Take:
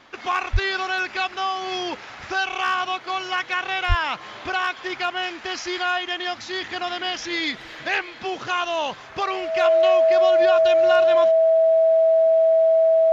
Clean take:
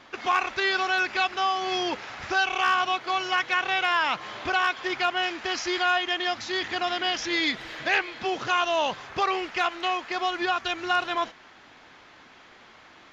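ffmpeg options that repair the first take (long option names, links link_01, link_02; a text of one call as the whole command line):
ffmpeg -i in.wav -filter_complex "[0:a]bandreject=frequency=650:width=30,asplit=3[link_01][link_02][link_03];[link_01]afade=type=out:start_time=0.52:duration=0.02[link_04];[link_02]highpass=frequency=140:width=0.5412,highpass=frequency=140:width=1.3066,afade=type=in:start_time=0.52:duration=0.02,afade=type=out:start_time=0.64:duration=0.02[link_05];[link_03]afade=type=in:start_time=0.64:duration=0.02[link_06];[link_04][link_05][link_06]amix=inputs=3:normalize=0,asplit=3[link_07][link_08][link_09];[link_07]afade=type=out:start_time=3.88:duration=0.02[link_10];[link_08]highpass=frequency=140:width=0.5412,highpass=frequency=140:width=1.3066,afade=type=in:start_time=3.88:duration=0.02,afade=type=out:start_time=4:duration=0.02[link_11];[link_09]afade=type=in:start_time=4:duration=0.02[link_12];[link_10][link_11][link_12]amix=inputs=3:normalize=0" out.wav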